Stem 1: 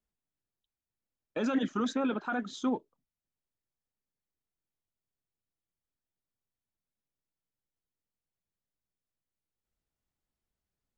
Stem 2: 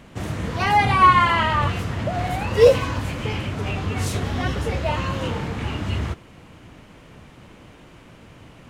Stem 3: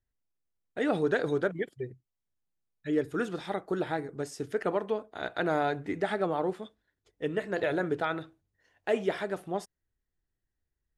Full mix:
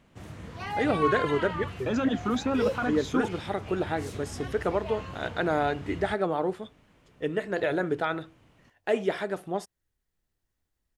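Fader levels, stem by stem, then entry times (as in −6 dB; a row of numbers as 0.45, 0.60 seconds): +3.0, −15.0, +2.0 decibels; 0.50, 0.00, 0.00 seconds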